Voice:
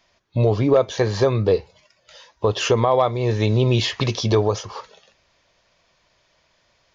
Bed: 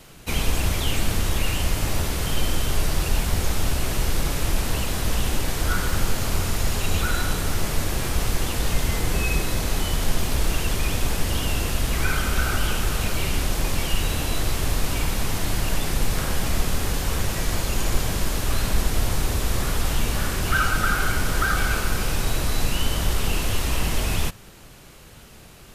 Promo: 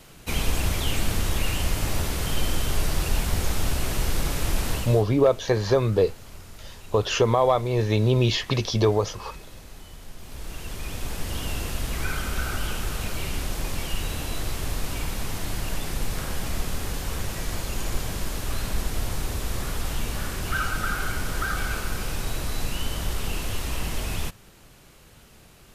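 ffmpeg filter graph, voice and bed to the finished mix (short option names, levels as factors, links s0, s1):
-filter_complex "[0:a]adelay=4500,volume=0.75[s0];[1:a]volume=4.22,afade=t=out:st=4.72:d=0.33:silence=0.125893,afade=t=in:st=10.17:d=1.31:silence=0.188365[s1];[s0][s1]amix=inputs=2:normalize=0"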